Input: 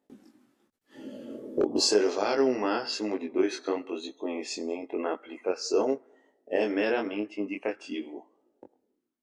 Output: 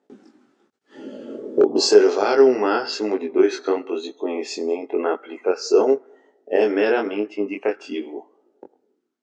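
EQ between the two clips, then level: cabinet simulation 140–7500 Hz, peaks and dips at 410 Hz +8 dB, 790 Hz +4 dB, 1.4 kHz +6 dB; +4.5 dB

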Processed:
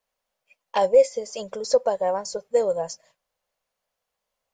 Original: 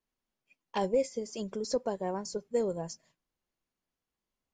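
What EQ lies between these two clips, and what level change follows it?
resonant low shelf 420 Hz -8.5 dB, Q 3; +7.5 dB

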